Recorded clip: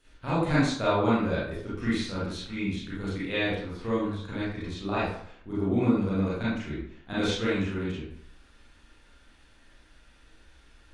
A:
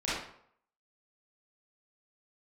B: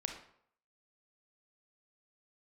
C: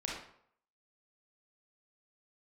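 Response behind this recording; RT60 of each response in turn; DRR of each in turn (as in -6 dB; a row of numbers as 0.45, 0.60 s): A; 0.65, 0.65, 0.65 s; -11.0, 3.5, -3.5 dB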